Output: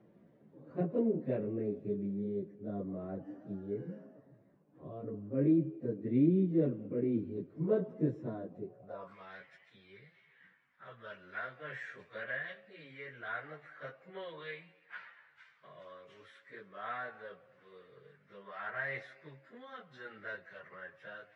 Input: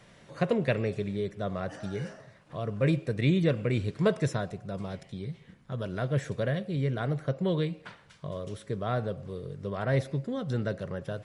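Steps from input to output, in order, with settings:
time stretch by phase vocoder 1.9×
band-pass filter sweep 290 Hz → 1,800 Hz, 0:08.62–0:09.18
high-shelf EQ 5,600 Hz −9.5 dB
level +4.5 dB

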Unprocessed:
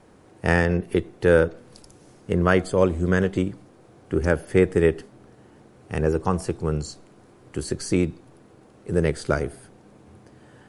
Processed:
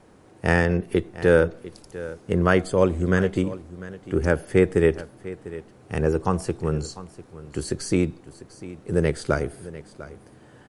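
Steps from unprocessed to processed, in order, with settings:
single-tap delay 698 ms −16.5 dB

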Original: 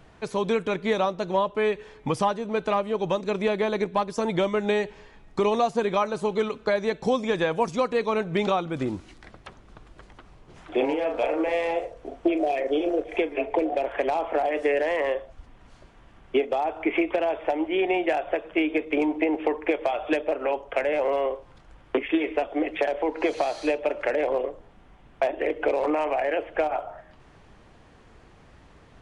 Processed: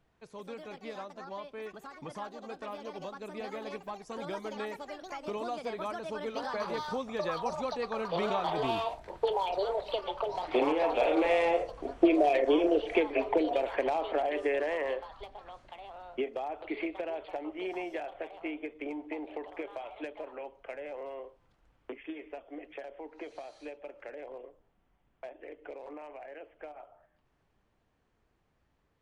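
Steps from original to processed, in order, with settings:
source passing by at 0:12.03, 7 m/s, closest 9 metres
delay with pitch and tempo change per echo 221 ms, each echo +5 semitones, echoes 2, each echo −6 dB

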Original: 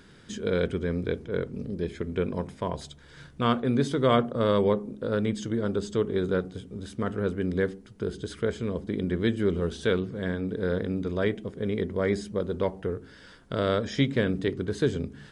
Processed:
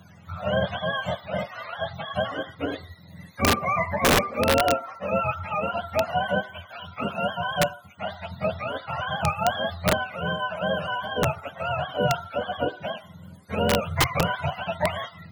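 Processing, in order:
frequency axis turned over on the octave scale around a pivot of 530 Hz
wrap-around overflow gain 16 dB
level +4 dB

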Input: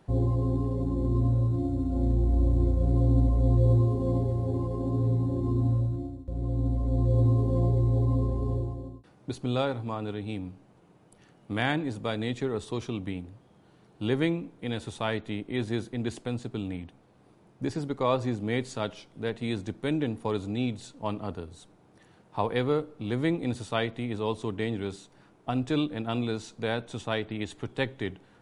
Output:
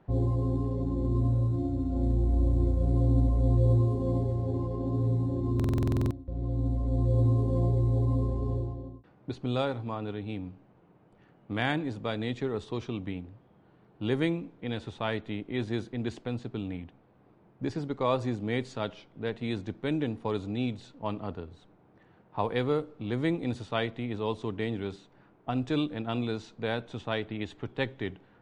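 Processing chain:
low-pass that shuts in the quiet parts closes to 2,200 Hz, open at −20 dBFS
buffer that repeats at 0:05.55, samples 2,048, times 11
level −1.5 dB

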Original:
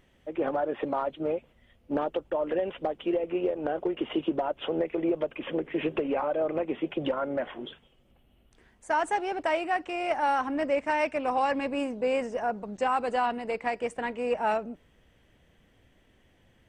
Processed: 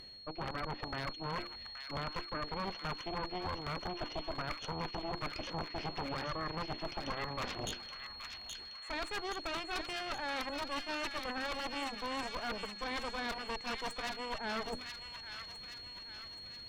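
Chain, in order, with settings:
mains-hum notches 50/100/150/200/250/300/350 Hz
reversed playback
downward compressor 8 to 1, threshold −42 dBFS, peak gain reduction 19.5 dB
reversed playback
harmonic generator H 3 −6 dB, 4 −11 dB, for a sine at −31 dBFS
wave folding −40 dBFS
steady tone 4,300 Hz −60 dBFS
delay with a high-pass on its return 824 ms, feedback 52%, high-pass 1,600 Hz, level −4.5 dB
level +10 dB

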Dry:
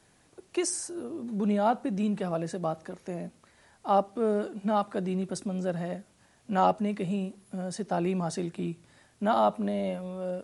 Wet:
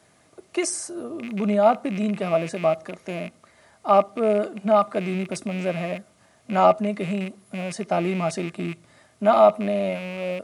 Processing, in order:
loose part that buzzes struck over −39 dBFS, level −31 dBFS
high-pass filter 73 Hz
hollow resonant body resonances 640/1,200/2,100 Hz, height 10 dB
level +3.5 dB

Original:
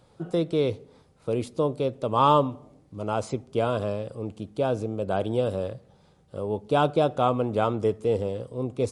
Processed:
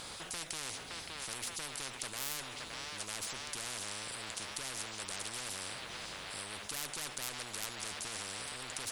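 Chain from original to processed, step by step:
soft clipping −23.5 dBFS, distortion −8 dB
guitar amp tone stack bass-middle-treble 5-5-5
delay with a band-pass on its return 568 ms, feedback 71%, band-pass 1,500 Hz, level −8 dB
every bin compressed towards the loudest bin 10 to 1
level +13 dB

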